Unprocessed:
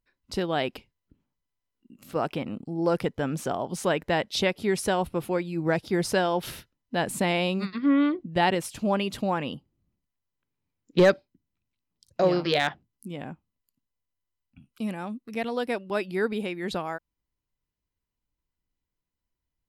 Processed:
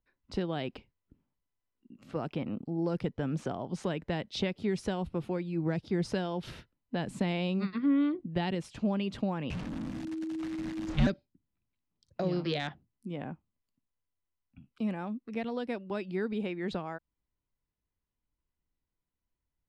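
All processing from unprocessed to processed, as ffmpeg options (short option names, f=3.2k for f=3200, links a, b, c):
-filter_complex "[0:a]asettb=1/sr,asplit=3[a][b][c];[a]atrim=end=9.504[d];[b]atrim=start=9.5:end=11.07,asetpts=PTS-STARTPTS,afade=t=in:d=0.004:c=qsin,afade=t=out:st=1.566:d=0.004:c=qsin,aeval=exprs='val(0)+0.5*0.0422*sgn(val(0))':c=same,equalizer=f=370:t=o:w=1.8:g=-8,afreqshift=-320[e];[c]atrim=start=11.066[f];[d][e]acrossfade=d=0.004:c1=hsin:c2=qsin[g];[g][f]acrossfade=d=0.004:c1=qsin:c2=hsin,lowpass=8.8k,aemphasis=mode=reproduction:type=75fm,acrossover=split=280|3000[h][i][j];[i]acompressor=threshold=-33dB:ratio=6[k];[h][k][j]amix=inputs=3:normalize=0,volume=-2dB"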